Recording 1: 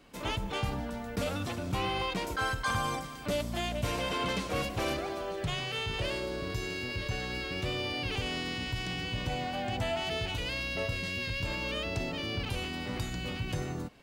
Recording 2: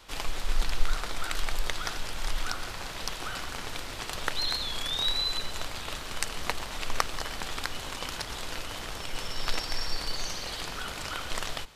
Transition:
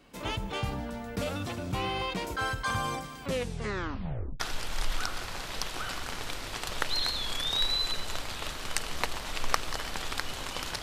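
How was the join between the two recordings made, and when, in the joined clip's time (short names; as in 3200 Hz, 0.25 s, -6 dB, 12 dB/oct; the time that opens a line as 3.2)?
recording 1
3.21 tape stop 1.19 s
4.4 switch to recording 2 from 1.86 s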